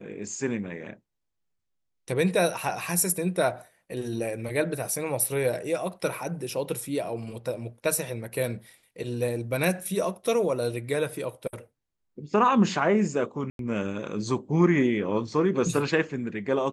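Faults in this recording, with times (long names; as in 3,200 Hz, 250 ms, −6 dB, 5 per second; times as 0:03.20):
0:13.50–0:13.59: drop-out 92 ms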